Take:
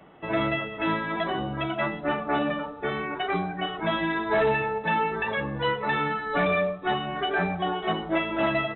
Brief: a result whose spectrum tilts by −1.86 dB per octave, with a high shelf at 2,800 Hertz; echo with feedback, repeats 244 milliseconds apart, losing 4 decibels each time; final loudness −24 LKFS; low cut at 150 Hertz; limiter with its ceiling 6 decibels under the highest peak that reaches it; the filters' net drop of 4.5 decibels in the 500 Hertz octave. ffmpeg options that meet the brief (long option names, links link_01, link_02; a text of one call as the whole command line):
ffmpeg -i in.wav -af "highpass=150,equalizer=frequency=500:width_type=o:gain=-6.5,highshelf=frequency=2800:gain=8,alimiter=limit=-20dB:level=0:latency=1,aecho=1:1:244|488|732|976|1220|1464|1708|1952|2196:0.631|0.398|0.25|0.158|0.0994|0.0626|0.0394|0.0249|0.0157,volume=2.5dB" out.wav